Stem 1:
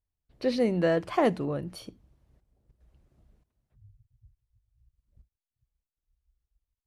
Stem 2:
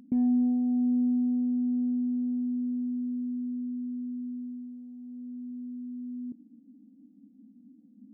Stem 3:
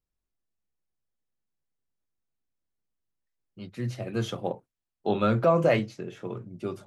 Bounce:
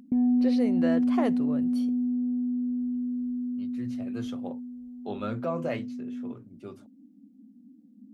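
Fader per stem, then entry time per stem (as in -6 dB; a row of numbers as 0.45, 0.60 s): -5.5, +1.5, -9.5 dB; 0.00, 0.00, 0.00 s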